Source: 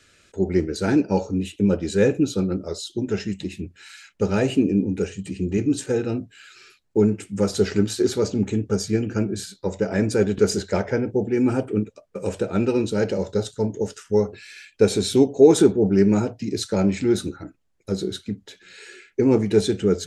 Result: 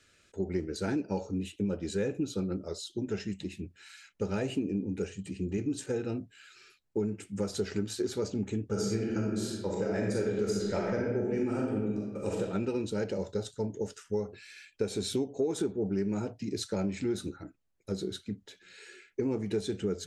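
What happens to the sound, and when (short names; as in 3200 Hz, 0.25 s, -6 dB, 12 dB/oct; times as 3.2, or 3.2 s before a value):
8.66–12.4 reverb throw, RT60 1.1 s, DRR -3 dB
whole clip: compressor 6:1, threshold -19 dBFS; gain -8 dB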